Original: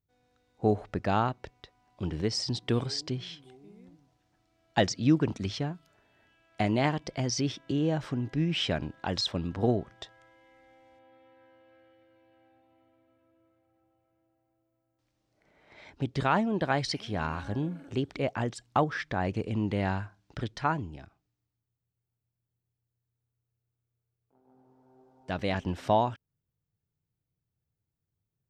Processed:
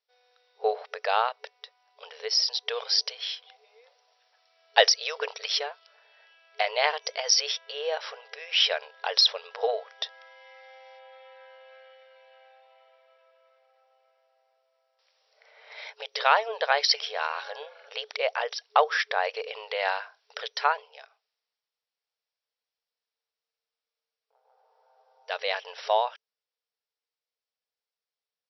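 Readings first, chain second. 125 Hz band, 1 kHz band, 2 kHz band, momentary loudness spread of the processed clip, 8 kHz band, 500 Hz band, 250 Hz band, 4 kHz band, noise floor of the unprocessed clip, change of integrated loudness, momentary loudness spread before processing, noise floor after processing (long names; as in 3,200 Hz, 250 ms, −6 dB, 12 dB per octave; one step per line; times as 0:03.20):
below −40 dB, +4.5 dB, +7.5 dB, 15 LU, +8.0 dB, +2.5 dB, below −35 dB, +10.5 dB, below −85 dBFS, +4.0 dB, 12 LU, below −85 dBFS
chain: brick-wall band-pass 420–5,800 Hz
high-shelf EQ 2,600 Hz +11.5 dB
speech leveller 2 s
level +1 dB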